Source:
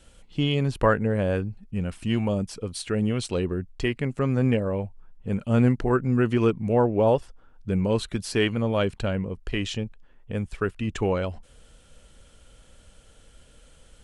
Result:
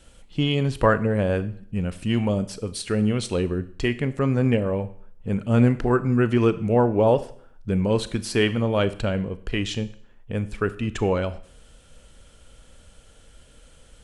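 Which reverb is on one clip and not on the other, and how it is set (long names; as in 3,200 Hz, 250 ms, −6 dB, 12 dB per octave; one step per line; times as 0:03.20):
four-comb reverb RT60 0.58 s, combs from 26 ms, DRR 13.5 dB
level +2 dB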